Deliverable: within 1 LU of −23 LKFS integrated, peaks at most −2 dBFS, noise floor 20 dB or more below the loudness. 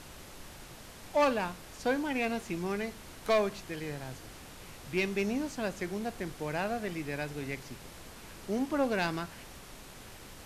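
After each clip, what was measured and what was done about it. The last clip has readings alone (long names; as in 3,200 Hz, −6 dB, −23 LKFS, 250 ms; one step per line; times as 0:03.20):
share of clipped samples 0.4%; peaks flattened at −21.0 dBFS; background noise floor −50 dBFS; target noise floor −54 dBFS; integrated loudness −33.5 LKFS; sample peak −21.0 dBFS; target loudness −23.0 LKFS
→ clipped peaks rebuilt −21 dBFS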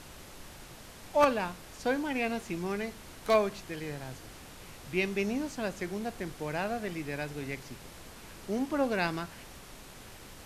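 share of clipped samples 0.0%; background noise floor −50 dBFS; target noise floor −53 dBFS
→ noise reduction from a noise print 6 dB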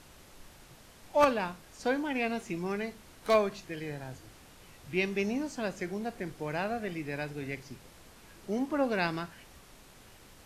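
background noise floor −56 dBFS; integrated loudness −32.5 LKFS; sample peak −12.0 dBFS; target loudness −23.0 LKFS
→ level +9.5 dB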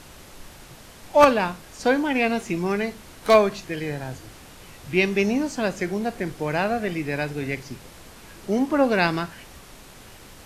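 integrated loudness −23.0 LKFS; sample peak −2.5 dBFS; background noise floor −46 dBFS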